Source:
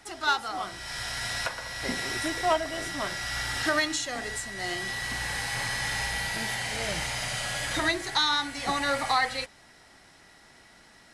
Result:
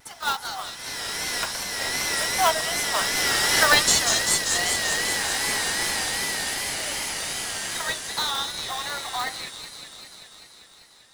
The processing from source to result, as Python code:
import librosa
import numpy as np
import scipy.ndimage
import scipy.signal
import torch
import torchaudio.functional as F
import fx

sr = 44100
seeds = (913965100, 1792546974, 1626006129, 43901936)

p1 = fx.doppler_pass(x, sr, speed_mps=8, closest_m=10.0, pass_at_s=3.64)
p2 = scipy.signal.sosfilt(scipy.signal.butter(4, 740.0, 'highpass', fs=sr, output='sos'), p1)
p3 = p2 + fx.echo_wet_highpass(p2, sr, ms=196, feedback_pct=77, hz=3500.0, wet_db=-3.0, dry=0)
p4 = fx.vibrato(p3, sr, rate_hz=2.6, depth_cents=72.0)
p5 = fx.sample_hold(p4, sr, seeds[0], rate_hz=2400.0, jitter_pct=20)
p6 = p4 + F.gain(torch.from_numpy(p5), -8.0).numpy()
p7 = fx.high_shelf(p6, sr, hz=6600.0, db=7.0)
y = F.gain(torch.from_numpy(p7), 8.0).numpy()